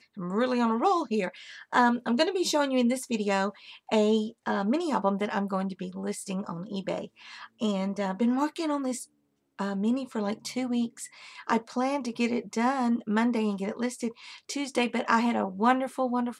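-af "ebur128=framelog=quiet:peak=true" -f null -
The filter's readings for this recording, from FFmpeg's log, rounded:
Integrated loudness:
  I:         -28.3 LUFS
  Threshold: -38.6 LUFS
Loudness range:
  LRA:         4.9 LU
  Threshold: -49.0 LUFS
  LRA low:   -31.5 LUFS
  LRA high:  -26.6 LUFS
True peak:
  Peak:       -8.0 dBFS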